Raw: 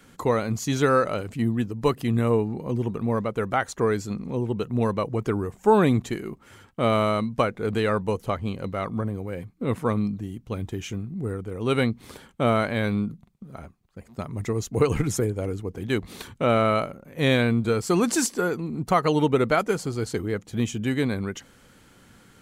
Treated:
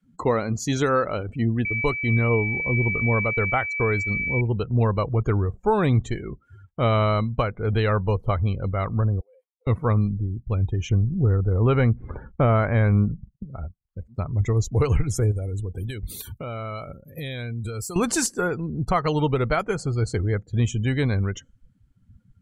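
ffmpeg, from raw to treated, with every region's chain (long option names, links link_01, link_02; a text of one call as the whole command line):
ffmpeg -i in.wav -filter_complex "[0:a]asettb=1/sr,asplit=3[link_01][link_02][link_03];[link_01]atrim=end=1.654[link_04];[link_02]atrim=start=1.65:end=4.41,asetpts=PTS-STARTPTS,afade=type=in:duration=0.004:curve=qsin,afade=type=out:start_time=2.756:duration=0.004:curve=qsin,agate=range=-21dB:threshold=-35dB:ratio=16:release=100:detection=peak,aeval=exprs='val(0)+0.0501*sin(2*PI*2300*n/s)':channel_layout=same[link_05];[link_03]atrim=start=4.406[link_06];[link_04][link_05]acrossfade=duration=0.004:curve1=hsin:curve2=qsin[link_07];[link_07][link_06]acrossfade=duration=0.004:curve1=qsin:curve2=hsin,asettb=1/sr,asplit=3[link_08][link_09][link_10];[link_08]atrim=end=9.204[link_11];[link_09]atrim=start=9.2:end=9.67,asetpts=PTS-STARTPTS,afade=type=in:duration=0.004:curve=qsin,afade=type=out:start_time=0.466:duration=0.004:curve=qsin,acompressor=threshold=-36dB:ratio=5:attack=3.2:release=140:knee=1:detection=peak,highpass=frequency=650:width=0.5412,highpass=frequency=650:width=1.3066,equalizer=frequency=1600:width_type=o:width=1.8:gain=-8.5[link_12];[link_10]atrim=start=9.666[link_13];[link_11][link_12]acrossfade=duration=0.004:curve1=hsin:curve2=qsin[link_14];[link_14][link_13]acrossfade=duration=0.004:curve1=qsin:curve2=hsin,asettb=1/sr,asplit=3[link_15][link_16][link_17];[link_15]atrim=end=10.894[link_18];[link_16]atrim=start=10.89:end=13.45,asetpts=PTS-STARTPTS,afade=type=in:duration=0.004:curve=qsin,afade=type=out:start_time=2.556:duration=0.004:curve=qsin,lowpass=1800,acontrast=57[link_19];[link_17]atrim=start=13.446[link_20];[link_18][link_19]acrossfade=duration=0.004:curve1=hsin:curve2=qsin[link_21];[link_21][link_20]acrossfade=duration=0.004:curve1=qsin:curve2=hsin,asettb=1/sr,asplit=3[link_22][link_23][link_24];[link_22]atrim=end=15.314[link_25];[link_23]atrim=start=15.31:end=17.96,asetpts=PTS-STARTPTS,afade=type=in:duration=0.004:curve=qsin,afade=type=out:start_time=2.646:duration=0.004:curve=qsin,aemphasis=mode=production:type=75fm,acompressor=threshold=-31dB:ratio=6:attack=3.2:release=140:knee=1:detection=peak[link_26];[link_24]atrim=start=17.956[link_27];[link_25][link_26]acrossfade=duration=0.004:curve1=hsin:curve2=qsin[link_28];[link_28][link_27]acrossfade=duration=0.004:curve1=qsin:curve2=hsin,afftdn=noise_reduction=30:noise_floor=-41,asubboost=boost=7:cutoff=85,alimiter=limit=-13dB:level=0:latency=1:release=337,volume=2dB" out.wav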